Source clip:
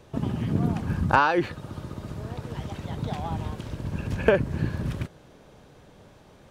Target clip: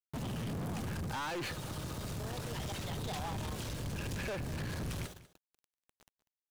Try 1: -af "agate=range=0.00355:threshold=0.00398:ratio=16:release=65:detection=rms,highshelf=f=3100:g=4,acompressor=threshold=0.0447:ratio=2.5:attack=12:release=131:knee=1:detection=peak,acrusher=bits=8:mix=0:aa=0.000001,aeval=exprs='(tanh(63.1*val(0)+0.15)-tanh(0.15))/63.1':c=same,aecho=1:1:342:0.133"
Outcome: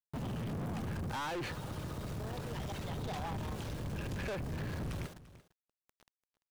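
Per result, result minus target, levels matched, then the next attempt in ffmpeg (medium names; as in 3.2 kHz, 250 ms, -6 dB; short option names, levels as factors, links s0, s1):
echo 148 ms late; 8 kHz band -6.0 dB
-af "agate=range=0.00355:threshold=0.00398:ratio=16:release=65:detection=rms,highshelf=f=3100:g=4,acompressor=threshold=0.0447:ratio=2.5:attack=12:release=131:knee=1:detection=peak,acrusher=bits=8:mix=0:aa=0.000001,aeval=exprs='(tanh(63.1*val(0)+0.15)-tanh(0.15))/63.1':c=same,aecho=1:1:194:0.133"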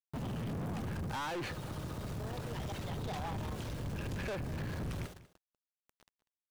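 8 kHz band -6.0 dB
-af "agate=range=0.00355:threshold=0.00398:ratio=16:release=65:detection=rms,highshelf=f=3100:g=14,acompressor=threshold=0.0447:ratio=2.5:attack=12:release=131:knee=1:detection=peak,acrusher=bits=8:mix=0:aa=0.000001,aeval=exprs='(tanh(63.1*val(0)+0.15)-tanh(0.15))/63.1':c=same,aecho=1:1:194:0.133"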